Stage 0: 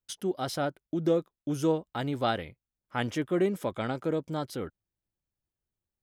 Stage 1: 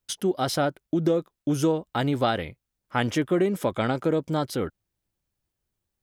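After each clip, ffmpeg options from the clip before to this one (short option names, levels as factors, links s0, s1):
-af "acompressor=threshold=0.0501:ratio=6,volume=2.37"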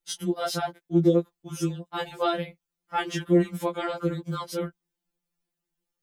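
-af "afftfilt=real='re*2.83*eq(mod(b,8),0)':imag='im*2.83*eq(mod(b,8),0)':win_size=2048:overlap=0.75"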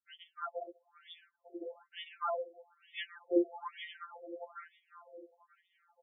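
-af "aecho=1:1:585|1170|1755|2340|2925:0.15|0.0763|0.0389|0.0198|0.0101,afftfilt=real='re*between(b*sr/1024,470*pow(2600/470,0.5+0.5*sin(2*PI*1.1*pts/sr))/1.41,470*pow(2600/470,0.5+0.5*sin(2*PI*1.1*pts/sr))*1.41)':imag='im*between(b*sr/1024,470*pow(2600/470,0.5+0.5*sin(2*PI*1.1*pts/sr))/1.41,470*pow(2600/470,0.5+0.5*sin(2*PI*1.1*pts/sr))*1.41)':win_size=1024:overlap=0.75,volume=0.631"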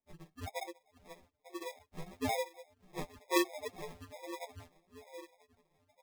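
-af "acrusher=samples=30:mix=1:aa=0.000001,flanger=delay=4.3:depth=2.5:regen=30:speed=1.8:shape=triangular,volume=1.78"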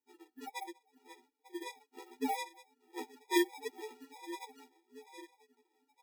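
-af "afftfilt=real='re*eq(mod(floor(b*sr/1024/250),2),1)':imag='im*eq(mod(floor(b*sr/1024/250),2),1)':win_size=1024:overlap=0.75,volume=1.26"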